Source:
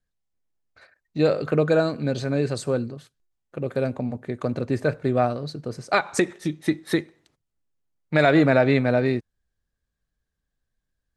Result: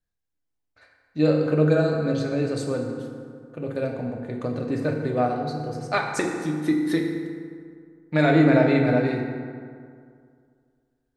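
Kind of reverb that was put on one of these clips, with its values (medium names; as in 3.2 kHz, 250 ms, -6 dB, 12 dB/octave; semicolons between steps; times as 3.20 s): FDN reverb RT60 2.2 s, low-frequency decay 1×, high-frequency decay 0.5×, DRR 0.5 dB; trim -4.5 dB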